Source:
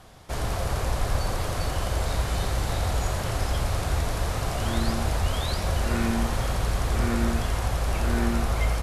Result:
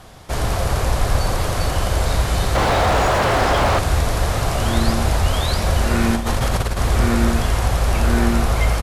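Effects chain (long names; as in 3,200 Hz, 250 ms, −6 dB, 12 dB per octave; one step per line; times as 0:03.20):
0:02.55–0:03.79: mid-hump overdrive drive 29 dB, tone 1,100 Hz, clips at −14 dBFS
0:06.14–0:06.77: compressor whose output falls as the input rises −26 dBFS, ratio −0.5
repeating echo 810 ms, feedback 54%, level −18 dB
level +7.5 dB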